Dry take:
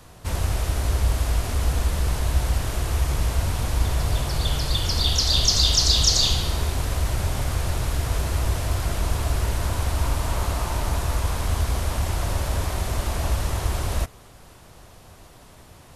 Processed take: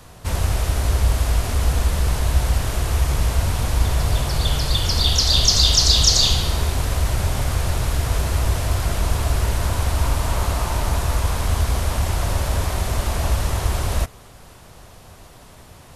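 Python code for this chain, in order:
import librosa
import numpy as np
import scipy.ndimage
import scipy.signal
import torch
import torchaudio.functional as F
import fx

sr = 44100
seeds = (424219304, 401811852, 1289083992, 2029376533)

y = fx.peak_eq(x, sr, hz=320.0, db=-2.5, octaves=0.32)
y = F.gain(torch.from_numpy(y), 3.5).numpy()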